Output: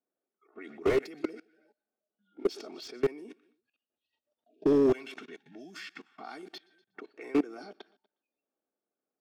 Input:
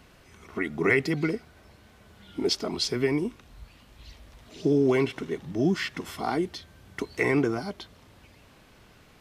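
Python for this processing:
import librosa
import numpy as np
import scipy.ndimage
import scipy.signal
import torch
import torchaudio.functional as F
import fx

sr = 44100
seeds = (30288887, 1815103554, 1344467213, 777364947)

y = fx.env_lowpass(x, sr, base_hz=820.0, full_db=-22.0)
y = fx.peak_eq(y, sr, hz=410.0, db=-12.0, octaves=1.6, at=(4.93, 6.43))
y = fx.noise_reduce_blind(y, sr, reduce_db=29)
y = fx.notch_comb(y, sr, f0_hz=1000.0)
y = fx.echo_feedback(y, sr, ms=121, feedback_pct=34, wet_db=-20)
y = fx.level_steps(y, sr, step_db=23)
y = scipy.signal.sosfilt(scipy.signal.butter(4, 260.0, 'highpass', fs=sr, output='sos'), y)
y = fx.slew_limit(y, sr, full_power_hz=30.0)
y = y * librosa.db_to_amplitude(3.0)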